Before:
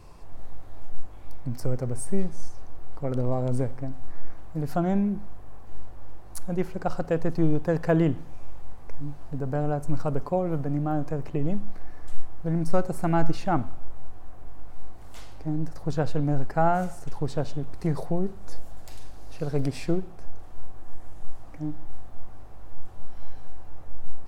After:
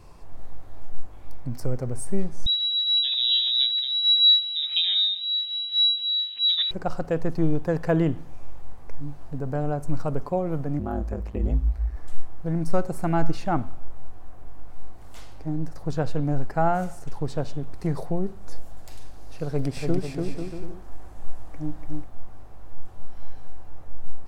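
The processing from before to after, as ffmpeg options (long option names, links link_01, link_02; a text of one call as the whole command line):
ffmpeg -i in.wav -filter_complex "[0:a]asettb=1/sr,asplit=3[link_01][link_02][link_03];[link_01]atrim=end=2.464[link_04];[link_02]atrim=start=2.46:end=6.71,asetpts=PTS-STARTPTS,afade=type=in:duration=0.004:curve=qsin,afade=type=out:start_time=4.246:duration=0.004:curve=qsin,lowpass=frequency=3300:width_type=q:width=0.5098,lowpass=frequency=3300:width_type=q:width=0.6013,lowpass=frequency=3300:width_type=q:width=0.9,lowpass=frequency=3300:width_type=q:width=2.563,afreqshift=-3900[link_05];[link_03]atrim=start=6.706[link_06];[link_04][link_05]acrossfade=duration=0.004:curve1=hsin:curve2=qsin[link_07];[link_07][link_06]acrossfade=duration=0.004:curve1=qsin:curve2=hsin,asettb=1/sr,asplit=3[link_08][link_09][link_10];[link_08]atrim=end=10.794[link_11];[link_09]atrim=start=10.79:end=11.96,asetpts=PTS-STARTPTS,afade=type=in:duration=0.004:curve=qsin,afade=type=out:start_time=1.166:duration=0.004:curve=qsin,aeval=exprs='val(0)*sin(2*PI*55*n/s)':channel_layout=same[link_12];[link_10]atrim=start=11.956[link_13];[link_11][link_12]acrossfade=duration=0.004:curve1=hsin:curve2=qsin[link_14];[link_14][link_13]acrossfade=duration=0.004:curve1=qsin:curve2=hsin,asettb=1/sr,asplit=3[link_15][link_16][link_17];[link_15]atrim=end=19.484[link_18];[link_16]atrim=start=19.48:end=22.04,asetpts=PTS-STARTPTS,afade=type=in:duration=0.004:curve=qsin,afade=type=out:start_time=2.556:duration=0.004:curve=qsin,aecho=1:1:290|493|635.1|734.6|804.2:0.631|0.398|0.251|0.158|0.1,atrim=end_sample=112896[link_19];[link_17]atrim=start=22.036[link_20];[link_18][link_19]acrossfade=duration=0.004:curve1=hsin:curve2=qsin[link_21];[link_21][link_20]acrossfade=duration=0.004:curve1=qsin:curve2=hsin" out.wav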